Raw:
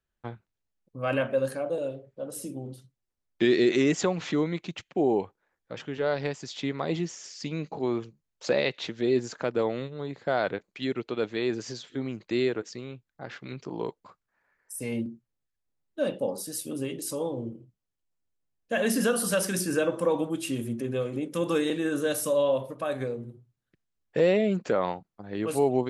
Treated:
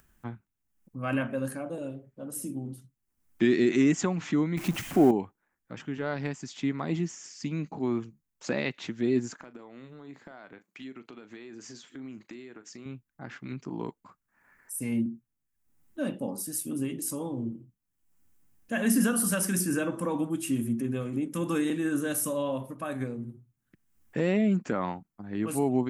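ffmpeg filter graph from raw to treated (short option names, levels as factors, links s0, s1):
-filter_complex "[0:a]asettb=1/sr,asplit=3[s0][s1][s2];[s0]atrim=end=4.574[s3];[s1]atrim=start=4.57:end=5.11,asetpts=PTS-STARTPTS,afade=t=in:d=0.004:c=qsin,afade=t=out:st=0.536:d=0.004:c=qsin,aeval=exprs='val(0)+0.5*0.0126*sgn(val(0))':c=same,equalizer=f=650:w=1.7:g=3.5,acontrast=23[s4];[s2]atrim=start=5.106[s5];[s3][s4]acrossfade=d=0.004:c1=hsin:c2=qsin[s6];[s6][s5]acrossfade=d=0.004:c1=qsin:c2=hsin,asettb=1/sr,asplit=3[s7][s8][s9];[s7]atrim=end=9.364[s10];[s8]atrim=start=9.36:end=12.86,asetpts=PTS-STARTPTS,afade=t=in:d=0.004:c=qsin,afade=t=out:st=3.496:d=0.004:c=qsin,highpass=f=320:p=1,acompressor=threshold=0.0112:ratio=12:attack=3.2:release=140:knee=1:detection=peak,asplit=2[s11][s12];[s12]adelay=38,volume=0.2[s13];[s11][s13]amix=inputs=2:normalize=0,atrim=end_sample=154350[s14];[s9]atrim=start=12.856[s15];[s10][s14]acrossfade=d=0.004:c1=hsin:c2=qsin[s16];[s16][s15]acrossfade=d=0.004:c1=qsin:c2=hsin,equalizer=f=250:t=o:w=1:g=6,equalizer=f=500:t=o:w=1:g=-10,equalizer=f=4000:t=o:w=1:g=-9,acompressor=mode=upward:threshold=0.00355:ratio=2.5,highshelf=f=8300:g=5.5"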